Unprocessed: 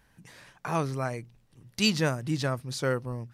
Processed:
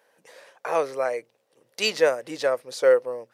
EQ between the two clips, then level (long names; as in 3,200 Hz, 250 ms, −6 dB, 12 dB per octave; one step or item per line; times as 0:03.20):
high-pass with resonance 510 Hz, resonance Q 4.9
dynamic equaliser 2,000 Hz, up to +6 dB, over −46 dBFS, Q 2.1
0.0 dB